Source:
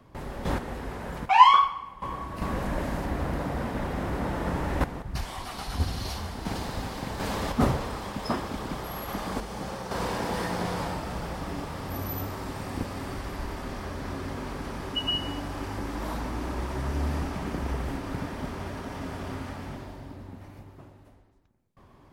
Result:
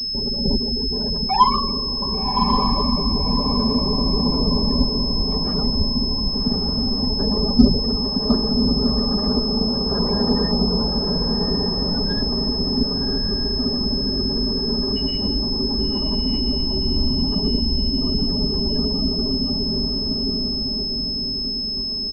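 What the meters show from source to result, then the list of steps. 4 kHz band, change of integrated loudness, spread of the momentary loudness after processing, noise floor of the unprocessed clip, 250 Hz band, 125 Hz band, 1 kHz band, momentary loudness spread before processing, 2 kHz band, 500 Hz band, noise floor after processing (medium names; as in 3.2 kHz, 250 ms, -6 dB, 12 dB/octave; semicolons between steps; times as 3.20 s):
+17.5 dB, +10.0 dB, 3 LU, -54 dBFS, +13.5 dB, +7.5 dB, +1.0 dB, 9 LU, -9.0 dB, +9.0 dB, -24 dBFS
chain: octave divider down 2 oct, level 0 dB; spectral gate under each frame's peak -15 dB strong; bass shelf 250 Hz +6 dB; comb 4.9 ms, depth 52%; in parallel at +3 dB: compression, threshold -36 dBFS, peak gain reduction 27 dB; on the sum: small resonant body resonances 250/420 Hz, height 12 dB, ringing for 40 ms; on a send: echo that smears into a reverb 1136 ms, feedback 43%, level -3.5 dB; on the sum: class-D stage that switches slowly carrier 5.2 kHz; trim -4 dB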